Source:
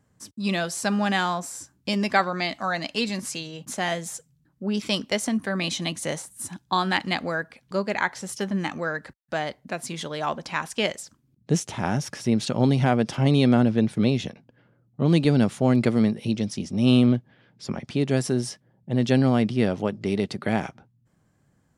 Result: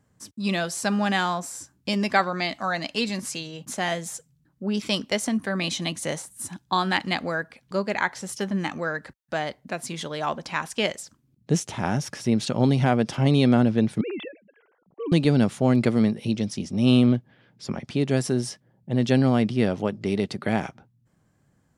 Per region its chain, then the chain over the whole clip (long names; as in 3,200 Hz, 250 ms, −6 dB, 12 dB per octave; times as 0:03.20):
0:14.01–0:15.12: three sine waves on the formant tracks + downward compressor 5 to 1, threshold −29 dBFS
whole clip: no processing